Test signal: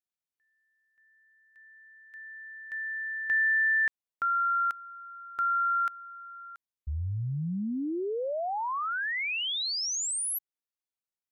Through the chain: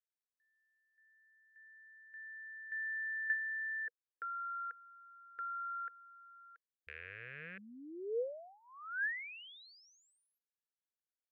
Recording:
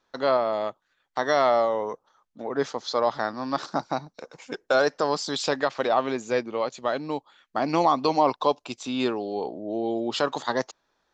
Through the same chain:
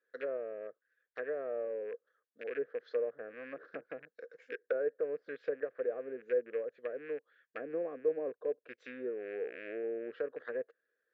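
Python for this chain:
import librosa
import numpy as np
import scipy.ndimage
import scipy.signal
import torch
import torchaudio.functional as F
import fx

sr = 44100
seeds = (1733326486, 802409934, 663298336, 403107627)

y = fx.rattle_buzz(x, sr, strikes_db=-40.0, level_db=-19.0)
y = fx.env_lowpass_down(y, sr, base_hz=680.0, full_db=-21.5)
y = fx.double_bandpass(y, sr, hz=890.0, octaves=1.8)
y = y * 10.0 ** (-2.0 / 20.0)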